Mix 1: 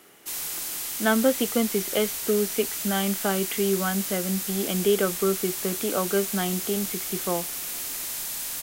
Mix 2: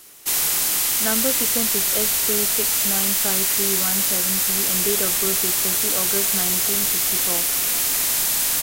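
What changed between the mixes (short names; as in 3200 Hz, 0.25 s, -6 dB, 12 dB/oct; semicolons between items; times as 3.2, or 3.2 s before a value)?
speech -4.5 dB; background +11.5 dB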